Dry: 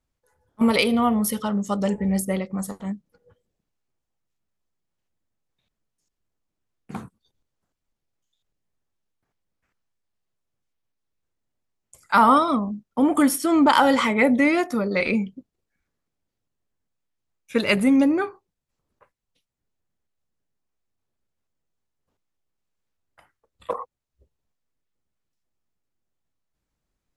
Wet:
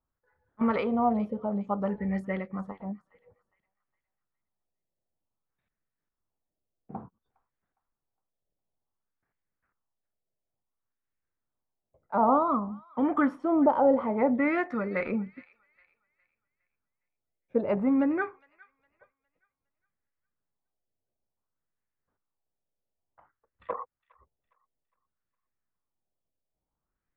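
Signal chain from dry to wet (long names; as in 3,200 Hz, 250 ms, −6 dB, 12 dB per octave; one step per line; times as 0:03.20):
auto-filter low-pass sine 0.56 Hz 600–1,900 Hz
delay with a high-pass on its return 410 ms, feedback 34%, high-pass 1,900 Hz, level −17 dB
level −7.5 dB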